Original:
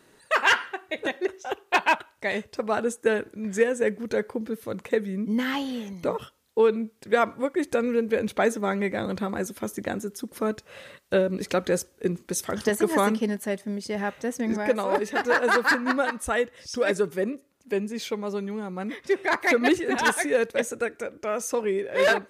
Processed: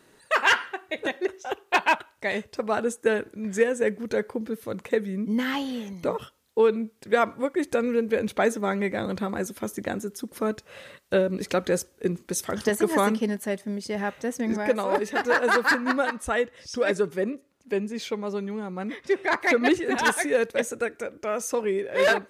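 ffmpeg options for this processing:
-filter_complex "[0:a]asettb=1/sr,asplit=3[a][b][c];[a]atrim=end=16.124[d];[b]atrim=start=16.12:end=19.83,asetpts=PTS-STARTPTS,afade=t=in:d=0.004:c=qsin,afade=t=out:st=3.706:d=0.004:c=qsin,highshelf=f=11k:g=-9.5[e];[c]atrim=start=19.826[f];[d][e]acrossfade=d=0.004:c1=hsin:c2=qsin[g];[g][f]acrossfade=d=0.004:c1=qsin:c2=hsin"

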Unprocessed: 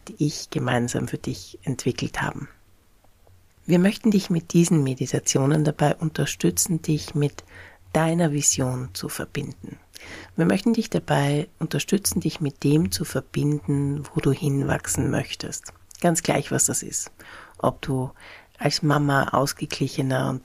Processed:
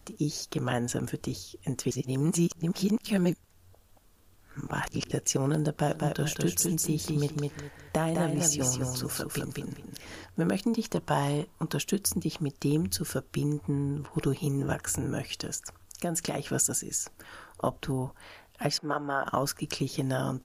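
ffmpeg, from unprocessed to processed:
-filter_complex "[0:a]asplit=3[a][b][c];[a]afade=t=out:st=5.88:d=0.02[d];[b]aecho=1:1:205|410|615:0.596|0.143|0.0343,afade=t=in:st=5.88:d=0.02,afade=t=out:st=10.09:d=0.02[e];[c]afade=t=in:st=10.09:d=0.02[f];[d][e][f]amix=inputs=3:normalize=0,asettb=1/sr,asplit=3[g][h][i];[g]atrim=end=10.744[j];[h]atrim=start=10.74:end=11.78,asetpts=PTS-STARTPTS,afade=t=in:d=0.004:c=qsin,afade=t=out:st=1.036:d=0.004:c=qsin,equalizer=f=1k:w=3.7:g=11[k];[i]atrim=start=11.776[l];[j][k]acrossfade=d=0.004:c1=hsin:c2=qsin[m];[m][l]acrossfade=d=0.004:c1=qsin:c2=hsin,asettb=1/sr,asplit=3[n][o][p];[n]atrim=end=13.614[q];[o]atrim=start=13.61:end=14.13,asetpts=PTS-STARTPTS,afade=t=in:d=0.004:c=qsin,afade=t=out:st=0.516:d=0.004:c=qsin,acrossover=split=4000[r][s];[s]acompressor=threshold=-55dB:ratio=4:attack=1:release=60[t];[r][t]amix=inputs=2:normalize=0[u];[p]atrim=start=14.126[v];[q][u]acrossfade=d=0.004:c1=hsin:c2=qsin[w];[w][v]acrossfade=d=0.004:c1=qsin:c2=hsin,asettb=1/sr,asplit=3[x][y][z];[x]atrim=end=14.734[aa];[y]atrim=start=14.73:end=16.47,asetpts=PTS-STARTPTS,afade=t=in:d=0.004:c=qsin,afade=t=out:st=1.736:d=0.004:c=qsin,acompressor=threshold=-22dB:ratio=2.5:attack=3.2:release=140:knee=1:detection=peak[ab];[z]atrim=start=16.466[ac];[aa][ab]acrossfade=d=0.004:c1=hsin:c2=qsin[ad];[ad][ac]acrossfade=d=0.004:c1=qsin:c2=hsin,asettb=1/sr,asplit=3[ae][af][ag];[ae]atrim=end=18.784[ah];[af]atrim=start=18.78:end=19.26,asetpts=PTS-STARTPTS,afade=t=in:d=0.004:c=qsin,afade=t=out:st=0.476:d=0.004:c=qsin,acrossover=split=350 2300:gain=0.158 1 0.141[ai][aj][ak];[ai][aj][ak]amix=inputs=3:normalize=0[al];[ag]atrim=start=19.256[am];[ah][al]acrossfade=d=0.004:c1=hsin:c2=qsin[an];[an][am]acrossfade=d=0.004:c1=qsin:c2=hsin,asplit=3[ao][ap][aq];[ao]atrim=end=1.912[ar];[ap]atrim=start=1.908:end=5.112,asetpts=PTS-STARTPTS,areverse[as];[aq]atrim=start=5.108[at];[ar][as]acrossfade=d=0.004:c1=hsin:c2=hsin[au];[au][at]acrossfade=d=0.004:c1=hsin:c2=hsin,highshelf=f=9k:g=5,acompressor=threshold=-25dB:ratio=1.5,equalizer=f=2.1k:w=3.7:g=-5.5,volume=-4dB"

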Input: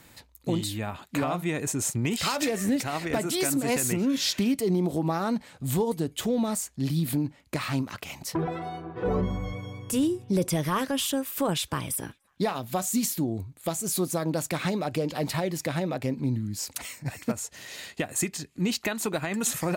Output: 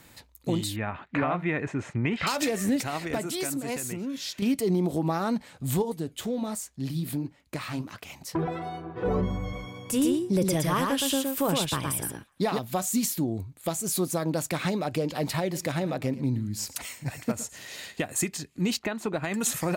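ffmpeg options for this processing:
-filter_complex "[0:a]asettb=1/sr,asplit=3[a][b][c];[a]atrim=end=0.764[d];[b]atrim=start=0.76:end=2.27,asetpts=PTS-STARTPTS,afade=t=in:d=0.004:c=qsin,afade=t=out:st=1.506:d=0.004:c=qsin,lowpass=f=2k:t=q:w=1.8[e];[c]atrim=start=2.266[f];[d][e]acrossfade=d=0.004:c1=hsin:c2=qsin[g];[g][f]acrossfade=d=0.004:c1=qsin:c2=hsin,asettb=1/sr,asplit=3[h][i][j];[h]atrim=end=5.824[k];[i]atrim=start=5.82:end=8.35,asetpts=PTS-STARTPTS,afade=t=in:d=0.004:c=qsin,afade=t=out:st=2.526:d=0.004:c=qsin,flanger=delay=1.8:depth=9.6:regen=-72:speed=1.3:shape=triangular[l];[j]atrim=start=8.346[m];[k][l]acrossfade=d=0.004:c1=hsin:c2=qsin[n];[n][m]acrossfade=d=0.004:c1=qsin:c2=hsin,asettb=1/sr,asplit=3[o][p][q];[o]atrim=end=9.424[r];[p]atrim=start=9.42:end=12.59,asetpts=PTS-STARTPTS,afade=t=in:d=0.004:c=qsin,afade=t=out:st=3.166:d=0.004:c=qsin,aecho=1:1:117:0.668,atrim=end_sample=139797[s];[q]atrim=start=12.586[t];[r][s]acrossfade=d=0.004:c1=hsin:c2=qsin[u];[u][t]acrossfade=d=0.004:c1=qsin:c2=hsin,asettb=1/sr,asplit=3[v][w][x];[v]atrim=end=15.404[y];[w]atrim=start=15.4:end=18.01,asetpts=PTS-STARTPTS,afade=t=in:d=0.004:c=qsin,afade=t=out:st=2.606:d=0.004:c=qsin,aecho=1:1:113:0.15,atrim=end_sample=115101[z];[x]atrim=start=18.006[aa];[y][z]acrossfade=d=0.004:c1=hsin:c2=qsin[ab];[ab][aa]acrossfade=d=0.004:c1=qsin:c2=hsin,asettb=1/sr,asplit=3[ac][ad][ae];[ac]atrim=end=18.794[af];[ad]atrim=start=18.79:end=19.24,asetpts=PTS-STARTPTS,afade=t=in:d=0.004:c=qsin,afade=t=out:st=0.446:d=0.004:c=qsin,lowpass=f=1.8k:p=1[ag];[ae]atrim=start=19.236[ah];[af][ag]acrossfade=d=0.004:c1=hsin:c2=qsin[ai];[ai][ah]acrossfade=d=0.004:c1=qsin:c2=hsin,asplit=2[aj][ak];[aj]atrim=end=4.42,asetpts=PTS-STARTPTS,afade=t=out:st=2.78:d=1.64:c=qua:silence=0.375837[al];[ak]atrim=start=4.42,asetpts=PTS-STARTPTS,afade=t=in:d=0.004:c=hsin:silence=0.375837[am];[al][am]concat=n=2:v=0:a=1"

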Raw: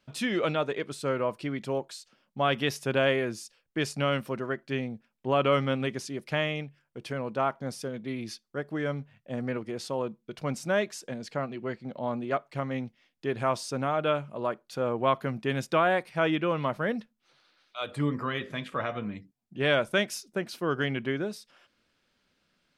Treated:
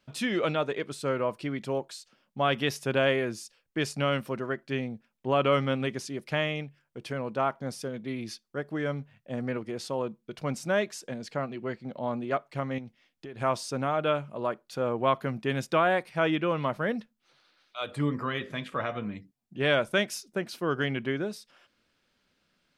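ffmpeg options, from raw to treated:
-filter_complex "[0:a]asettb=1/sr,asplit=3[a][b][c];[a]atrim=end=12.784[d];[b]atrim=start=12.78:end=13.41,asetpts=PTS-STARTPTS,afade=t=in:d=0.004:c=qsin,afade=t=out:st=0.626:d=0.004:c=qsin,acompressor=threshold=-37dB:ratio=12:attack=3.2:release=140:knee=1:detection=peak[e];[c]atrim=start=13.406[f];[d][e]acrossfade=d=0.004:c1=hsin:c2=qsin[g];[g][f]acrossfade=d=0.004:c1=qsin:c2=hsin"

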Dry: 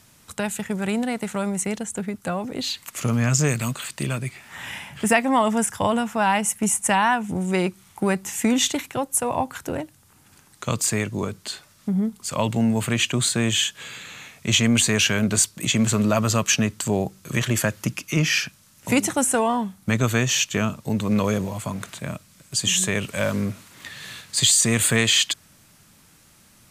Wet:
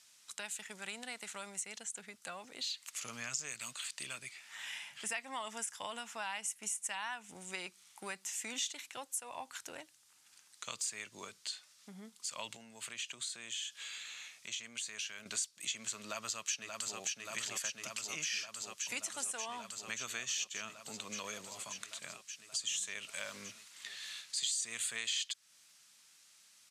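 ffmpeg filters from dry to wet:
-filter_complex "[0:a]asettb=1/sr,asplit=3[a][b][c];[a]atrim=end=12.564[d];[b]atrim=start=12.56:end=15.26,asetpts=PTS-STARTPTS,afade=t=in:d=0.004:c=qsin,afade=t=out:st=2.696:d=0.004:c=qsin,acompressor=threshold=-29dB:ratio=3:attack=3.2:release=140:knee=1:detection=peak[e];[c]atrim=start=15.256[f];[d][e]acrossfade=d=0.004:c1=hsin:c2=qsin[g];[g][f]acrossfade=d=0.004:c1=qsin:c2=hsin,asplit=2[h][i];[i]afade=t=in:st=16.03:d=0.01,afade=t=out:st=16.99:d=0.01,aecho=0:1:580|1160|1740|2320|2900|3480|4060|4640|5220|5800|6380|6960:0.668344|0.534675|0.42774|0.342192|0.273754|0.219003|0.175202|0.140162|0.11213|0.0897036|0.0717629|0.0574103[j];[h][j]amix=inputs=2:normalize=0,lowpass=5.5k,aderivative,acompressor=threshold=-40dB:ratio=2.5,volume=1dB"

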